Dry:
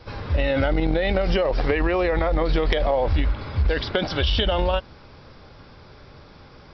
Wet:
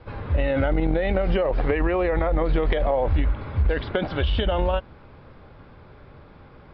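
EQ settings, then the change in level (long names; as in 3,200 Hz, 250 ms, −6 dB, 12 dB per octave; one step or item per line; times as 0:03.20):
low-pass filter 4,500 Hz 12 dB per octave
high-frequency loss of the air 320 metres
0.0 dB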